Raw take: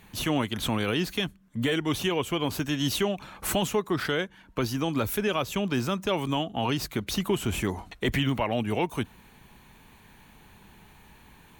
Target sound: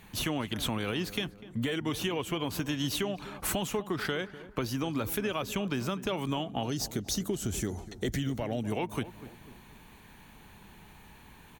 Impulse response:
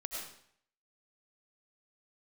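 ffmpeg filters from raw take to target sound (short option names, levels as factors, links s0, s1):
-filter_complex "[0:a]asettb=1/sr,asplit=3[s0][s1][s2];[s0]atrim=end=6.634[s3];[s1]atrim=start=6.63:end=8.72,asetpts=PTS-STARTPTS,afade=t=in:d=0.004:c=qsin,afade=t=out:st=2.086:d=0.004:c=qsin,equalizer=f=1000:t=o:w=0.67:g=-12,equalizer=f=2500:t=o:w=0.67:g=-11,equalizer=f=6300:t=o:w=0.67:g=8[s4];[s2]atrim=start=8.716[s5];[s3][s4]acrossfade=d=0.004:c1=hsin:c2=qsin[s6];[s6][s5]acrossfade=d=0.004:c1=qsin:c2=hsin,acompressor=threshold=0.0398:ratio=6,asplit=2[s7][s8];[s8]adelay=248,lowpass=f=1200:p=1,volume=0.2,asplit=2[s9][s10];[s10]adelay=248,lowpass=f=1200:p=1,volume=0.48,asplit=2[s11][s12];[s12]adelay=248,lowpass=f=1200:p=1,volume=0.48,asplit=2[s13][s14];[s14]adelay=248,lowpass=f=1200:p=1,volume=0.48,asplit=2[s15][s16];[s16]adelay=248,lowpass=f=1200:p=1,volume=0.48[s17];[s7][s9][s11][s13][s15][s17]amix=inputs=6:normalize=0"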